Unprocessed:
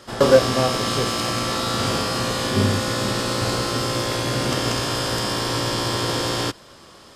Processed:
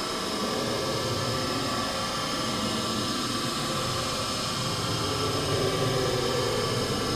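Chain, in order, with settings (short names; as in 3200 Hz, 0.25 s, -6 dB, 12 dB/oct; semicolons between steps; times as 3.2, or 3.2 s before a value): Paulstretch 27×, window 0.05 s, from 0.78; gain -6 dB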